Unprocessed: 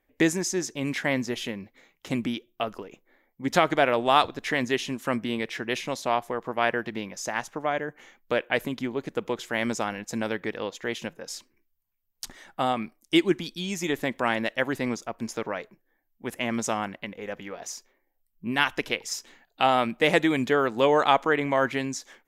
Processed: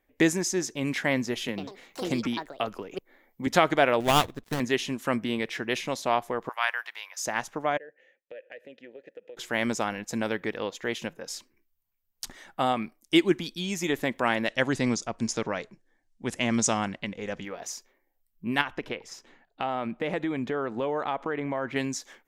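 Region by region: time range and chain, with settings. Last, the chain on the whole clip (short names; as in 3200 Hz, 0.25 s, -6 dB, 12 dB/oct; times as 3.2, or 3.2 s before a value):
1.48–3.47 echoes that change speed 96 ms, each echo +6 st, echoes 2, each echo -6 dB + three-band squash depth 40%
4–4.6 switching dead time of 0.24 ms + low shelf 190 Hz +11 dB + upward expander, over -38 dBFS
6.49–7.26 HPF 910 Hz 24 dB/oct + high shelf 9000 Hz +7 dB
7.77–9.37 vowel filter e + compressor, threshold -40 dBFS
14.48–17.45 Bessel low-pass 6100 Hz, order 6 + tone controls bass +6 dB, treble +13 dB
18.61–21.76 LPF 1500 Hz 6 dB/oct + compressor 3:1, threshold -27 dBFS
whole clip: dry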